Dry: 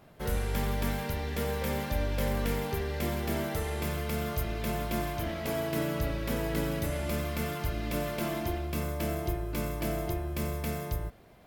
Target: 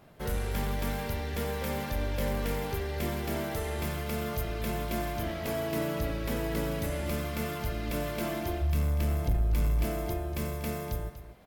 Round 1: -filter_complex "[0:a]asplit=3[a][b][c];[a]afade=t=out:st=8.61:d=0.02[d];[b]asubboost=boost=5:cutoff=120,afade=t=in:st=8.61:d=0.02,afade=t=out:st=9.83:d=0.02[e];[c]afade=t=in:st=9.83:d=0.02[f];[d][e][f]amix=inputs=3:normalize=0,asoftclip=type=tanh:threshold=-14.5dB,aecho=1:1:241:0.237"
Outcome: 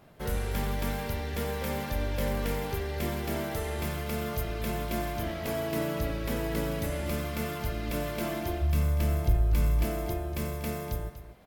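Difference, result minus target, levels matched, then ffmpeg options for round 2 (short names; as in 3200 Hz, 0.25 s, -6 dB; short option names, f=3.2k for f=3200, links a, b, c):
soft clip: distortion -8 dB
-filter_complex "[0:a]asplit=3[a][b][c];[a]afade=t=out:st=8.61:d=0.02[d];[b]asubboost=boost=5:cutoff=120,afade=t=in:st=8.61:d=0.02,afade=t=out:st=9.83:d=0.02[e];[c]afade=t=in:st=9.83:d=0.02[f];[d][e][f]amix=inputs=3:normalize=0,asoftclip=type=tanh:threshold=-21dB,aecho=1:1:241:0.237"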